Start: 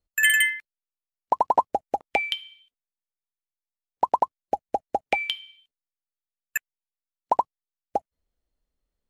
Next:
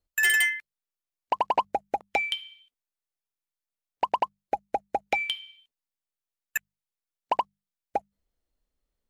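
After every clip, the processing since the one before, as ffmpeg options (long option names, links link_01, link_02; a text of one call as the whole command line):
ffmpeg -i in.wav -af "asoftclip=type=tanh:threshold=-16dB,bandreject=frequency=50:width_type=h:width=6,bandreject=frequency=100:width_type=h:width=6,bandreject=frequency=150:width_type=h:width=6,bandreject=frequency=200:width_type=h:width=6" out.wav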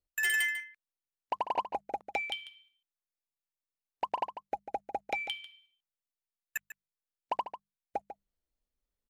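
ffmpeg -i in.wav -filter_complex "[0:a]asplit=2[link_01][link_02];[link_02]adelay=145.8,volume=-11dB,highshelf=frequency=4000:gain=-3.28[link_03];[link_01][link_03]amix=inputs=2:normalize=0,volume=-7.5dB" out.wav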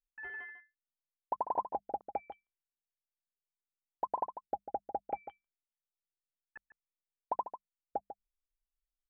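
ffmpeg -i in.wav -af "lowpass=frequency=1200:width=0.5412,lowpass=frequency=1200:width=1.3066,anlmdn=0.0000398,volume=-1dB" out.wav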